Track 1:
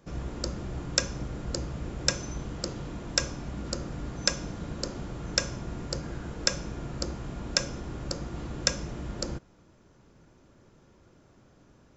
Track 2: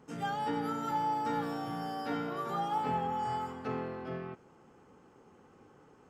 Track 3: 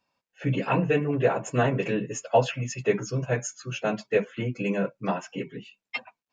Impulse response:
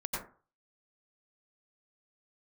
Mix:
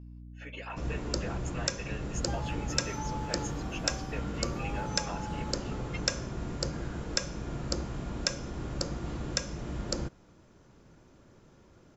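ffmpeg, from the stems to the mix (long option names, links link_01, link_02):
-filter_complex "[0:a]alimiter=limit=-9dB:level=0:latency=1:release=349,adelay=700,volume=0.5dB[link_01];[1:a]adelay=2050,volume=-8.5dB[link_02];[2:a]highpass=760,alimiter=level_in=0.5dB:limit=-24dB:level=0:latency=1:release=252,volume=-0.5dB,aeval=exprs='val(0)+0.0112*(sin(2*PI*60*n/s)+sin(2*PI*2*60*n/s)/2+sin(2*PI*3*60*n/s)/3+sin(2*PI*4*60*n/s)/4+sin(2*PI*5*60*n/s)/5)':channel_layout=same,volume=-6dB[link_03];[link_01][link_02][link_03]amix=inputs=3:normalize=0"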